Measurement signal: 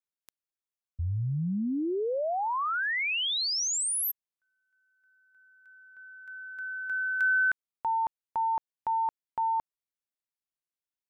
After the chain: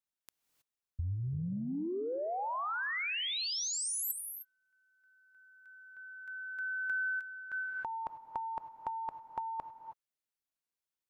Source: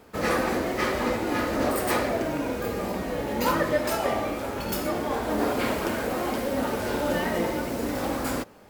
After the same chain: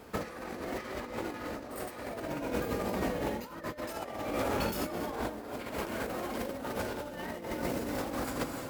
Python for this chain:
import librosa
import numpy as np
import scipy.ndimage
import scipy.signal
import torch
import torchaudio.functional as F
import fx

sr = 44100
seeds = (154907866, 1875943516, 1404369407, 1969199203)

y = fx.rev_gated(x, sr, seeds[0], gate_ms=340, shape='rising', drr_db=12.0)
y = fx.over_compress(y, sr, threshold_db=-31.0, ratio=-0.5)
y = F.gain(torch.from_numpy(y), -4.0).numpy()